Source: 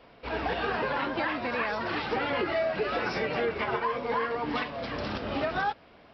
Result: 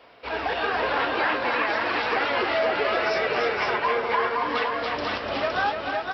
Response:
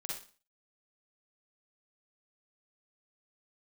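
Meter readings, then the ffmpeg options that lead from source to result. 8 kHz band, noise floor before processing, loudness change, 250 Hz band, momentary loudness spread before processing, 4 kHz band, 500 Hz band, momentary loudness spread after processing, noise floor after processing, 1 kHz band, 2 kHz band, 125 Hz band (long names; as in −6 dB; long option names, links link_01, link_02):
can't be measured, −55 dBFS, +5.5 dB, 0.0 dB, 5 LU, +7.0 dB, +4.5 dB, 4 LU, −35 dBFS, +6.5 dB, +7.0 dB, −3.5 dB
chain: -af "highpass=93,equalizer=frequency=170:width_type=o:width=1.7:gain=-12.5,aecho=1:1:296|514:0.501|0.668,volume=5dB"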